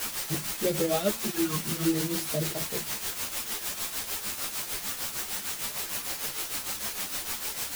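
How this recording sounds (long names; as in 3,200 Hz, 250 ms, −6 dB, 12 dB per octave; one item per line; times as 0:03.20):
phaser sweep stages 2, 0.52 Hz, lowest notch 690–1,400 Hz
a quantiser's noise floor 6 bits, dither triangular
tremolo triangle 6.6 Hz, depth 70%
a shimmering, thickened sound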